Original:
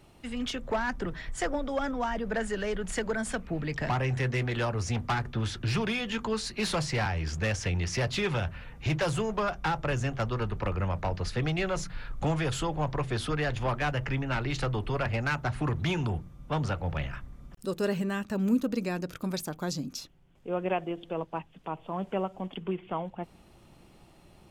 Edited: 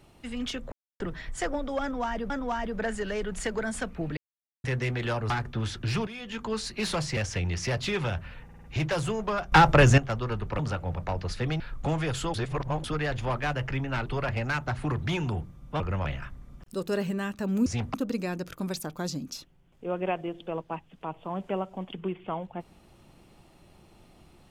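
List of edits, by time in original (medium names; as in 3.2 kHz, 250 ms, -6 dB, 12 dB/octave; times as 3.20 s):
0.72–1.00 s: mute
1.82–2.30 s: loop, 2 plays
3.69–4.16 s: mute
4.82–5.10 s: move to 18.57 s
5.87–6.37 s: fade in, from -14 dB
6.97–7.47 s: delete
8.74 s: stutter 0.05 s, 5 plays
9.62–10.08 s: gain +12 dB
10.69–10.94 s: swap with 16.57–16.96 s
11.56–11.98 s: delete
12.72–13.22 s: reverse
14.44–14.83 s: delete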